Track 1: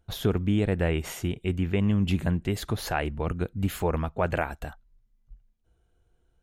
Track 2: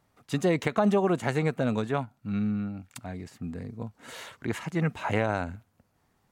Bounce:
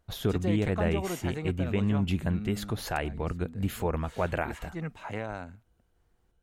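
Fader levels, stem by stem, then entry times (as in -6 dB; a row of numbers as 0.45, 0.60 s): -3.0, -9.0 dB; 0.00, 0.00 s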